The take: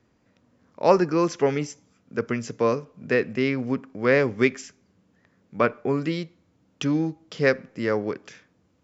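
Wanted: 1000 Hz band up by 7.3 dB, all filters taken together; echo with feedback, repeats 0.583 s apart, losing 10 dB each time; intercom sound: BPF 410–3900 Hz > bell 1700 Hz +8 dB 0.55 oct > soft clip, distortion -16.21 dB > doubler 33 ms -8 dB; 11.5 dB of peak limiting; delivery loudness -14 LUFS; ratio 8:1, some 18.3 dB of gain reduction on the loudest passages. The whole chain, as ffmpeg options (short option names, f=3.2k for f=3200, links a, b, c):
-filter_complex "[0:a]equalizer=f=1k:t=o:g=7.5,acompressor=threshold=-28dB:ratio=8,alimiter=level_in=1.5dB:limit=-24dB:level=0:latency=1,volume=-1.5dB,highpass=410,lowpass=3.9k,equalizer=f=1.7k:t=o:w=0.55:g=8,aecho=1:1:583|1166|1749|2332:0.316|0.101|0.0324|0.0104,asoftclip=threshold=-29.5dB,asplit=2[a][b];[b]adelay=33,volume=-8dB[c];[a][c]amix=inputs=2:normalize=0,volume=26.5dB"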